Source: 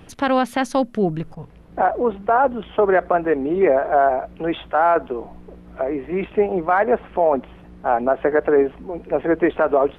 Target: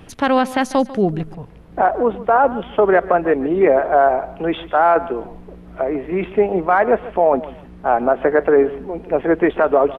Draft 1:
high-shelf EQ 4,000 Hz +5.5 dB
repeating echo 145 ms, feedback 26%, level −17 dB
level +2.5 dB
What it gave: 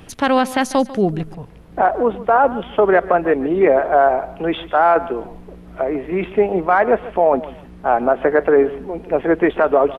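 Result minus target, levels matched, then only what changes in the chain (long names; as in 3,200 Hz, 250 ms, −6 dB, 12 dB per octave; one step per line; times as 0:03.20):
8,000 Hz band +4.0 dB
remove: high-shelf EQ 4,000 Hz +5.5 dB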